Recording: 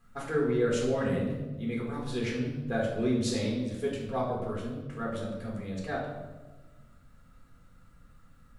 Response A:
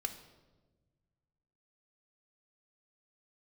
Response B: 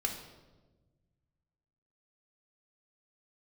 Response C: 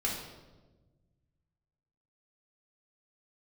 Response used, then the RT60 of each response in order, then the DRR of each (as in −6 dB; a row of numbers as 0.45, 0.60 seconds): C; 1.3, 1.3, 1.2 seconds; 7.5, 2.5, −3.5 decibels